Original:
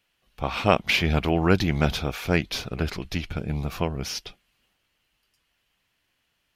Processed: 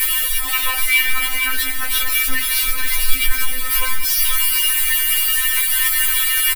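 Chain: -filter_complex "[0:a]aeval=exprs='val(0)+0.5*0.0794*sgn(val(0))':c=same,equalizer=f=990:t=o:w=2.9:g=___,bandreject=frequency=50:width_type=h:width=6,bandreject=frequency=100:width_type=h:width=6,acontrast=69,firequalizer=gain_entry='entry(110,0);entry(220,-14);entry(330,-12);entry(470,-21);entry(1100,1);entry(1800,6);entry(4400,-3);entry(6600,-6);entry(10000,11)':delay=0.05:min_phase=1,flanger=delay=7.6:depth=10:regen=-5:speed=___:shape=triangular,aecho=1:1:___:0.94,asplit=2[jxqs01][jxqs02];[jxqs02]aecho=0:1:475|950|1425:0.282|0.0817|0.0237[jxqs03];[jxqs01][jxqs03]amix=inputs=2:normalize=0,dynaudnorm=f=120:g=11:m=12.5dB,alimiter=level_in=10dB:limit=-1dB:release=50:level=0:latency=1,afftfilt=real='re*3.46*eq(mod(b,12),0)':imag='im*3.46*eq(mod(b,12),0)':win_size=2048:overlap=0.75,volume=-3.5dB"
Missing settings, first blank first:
-7.5, 0.36, 6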